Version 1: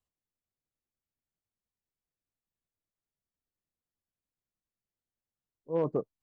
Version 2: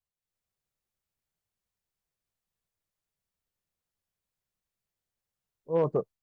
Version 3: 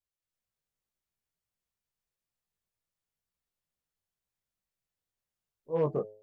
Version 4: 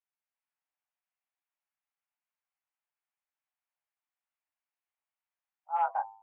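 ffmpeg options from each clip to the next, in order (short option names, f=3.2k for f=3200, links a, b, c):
-af "equalizer=f=280:t=o:w=0.48:g=-8.5,dynaudnorm=f=180:g=3:m=10dB,volume=-5.5dB"
-af "flanger=delay=16:depth=5.5:speed=2.1,bandreject=f=106.4:t=h:w=4,bandreject=f=212.8:t=h:w=4,bandreject=f=319.2:t=h:w=4,bandreject=f=425.6:t=h:w=4,bandreject=f=532:t=h:w=4,bandreject=f=638.4:t=h:w=4,bandreject=f=744.8:t=h:w=4,bandreject=f=851.2:t=h:w=4"
-af "highpass=f=280:t=q:w=0.5412,highpass=f=280:t=q:w=1.307,lowpass=f=2.5k:t=q:w=0.5176,lowpass=f=2.5k:t=q:w=0.7071,lowpass=f=2.5k:t=q:w=1.932,afreqshift=360"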